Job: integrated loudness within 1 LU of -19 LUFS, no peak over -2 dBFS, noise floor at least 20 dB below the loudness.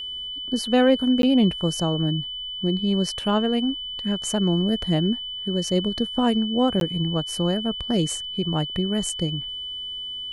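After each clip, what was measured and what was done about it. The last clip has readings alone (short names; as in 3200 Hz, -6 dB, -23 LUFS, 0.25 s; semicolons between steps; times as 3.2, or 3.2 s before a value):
dropouts 2; longest dropout 12 ms; steady tone 3000 Hz; tone level -30 dBFS; loudness -23.5 LUFS; peak -7.5 dBFS; loudness target -19.0 LUFS
-> interpolate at 1.22/6.8, 12 ms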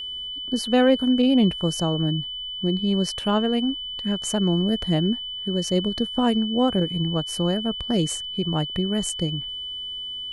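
dropouts 0; steady tone 3000 Hz; tone level -30 dBFS
-> notch 3000 Hz, Q 30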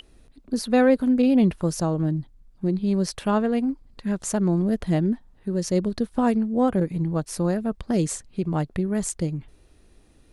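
steady tone none; loudness -24.0 LUFS; peak -8.0 dBFS; loudness target -19.0 LUFS
-> gain +5 dB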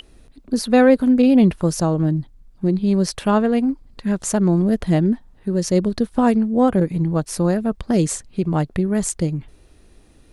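loudness -19.0 LUFS; peak -3.0 dBFS; noise floor -51 dBFS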